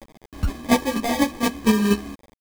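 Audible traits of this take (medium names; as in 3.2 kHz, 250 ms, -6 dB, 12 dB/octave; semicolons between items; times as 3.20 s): a quantiser's noise floor 6-bit, dither none; chopped level 4.2 Hz, depth 60%, duty 15%; aliases and images of a low sample rate 1.4 kHz, jitter 0%; a shimmering, thickened sound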